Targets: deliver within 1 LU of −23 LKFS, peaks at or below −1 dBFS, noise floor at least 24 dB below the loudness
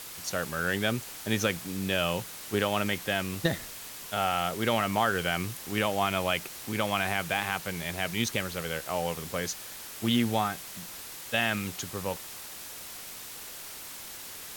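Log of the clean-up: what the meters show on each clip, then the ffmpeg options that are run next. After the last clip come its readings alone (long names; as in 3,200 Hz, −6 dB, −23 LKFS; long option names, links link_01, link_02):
background noise floor −43 dBFS; target noise floor −55 dBFS; integrated loudness −30.5 LKFS; sample peak −11.0 dBFS; target loudness −23.0 LKFS
→ -af "afftdn=noise_reduction=12:noise_floor=-43"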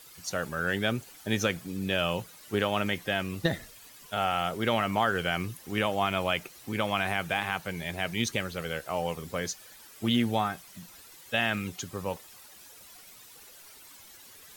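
background noise floor −52 dBFS; target noise floor −54 dBFS
→ -af "afftdn=noise_reduction=6:noise_floor=-52"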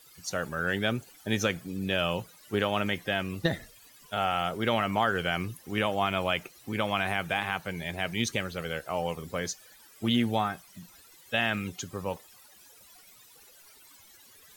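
background noise floor −56 dBFS; integrated loudness −30.0 LKFS; sample peak −11.0 dBFS; target loudness −23.0 LKFS
→ -af "volume=7dB"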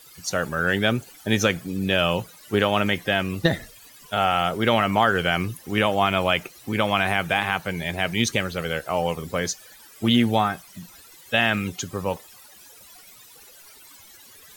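integrated loudness −23.0 LKFS; sample peak −4.0 dBFS; background noise floor −49 dBFS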